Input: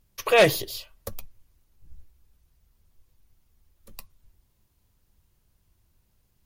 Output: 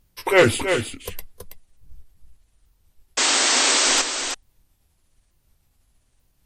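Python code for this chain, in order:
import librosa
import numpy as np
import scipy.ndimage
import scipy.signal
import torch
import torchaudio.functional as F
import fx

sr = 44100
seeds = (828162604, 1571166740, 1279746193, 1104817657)

y = fx.pitch_ramps(x, sr, semitones=-9.0, every_ms=885)
y = fx.spec_paint(y, sr, seeds[0], shape='noise', start_s=3.17, length_s=0.85, low_hz=230.0, high_hz=8500.0, level_db=-23.0)
y = y + 10.0 ** (-7.5 / 20.0) * np.pad(y, (int(326 * sr / 1000.0), 0))[:len(y)]
y = F.gain(torch.from_numpy(y), 4.0).numpy()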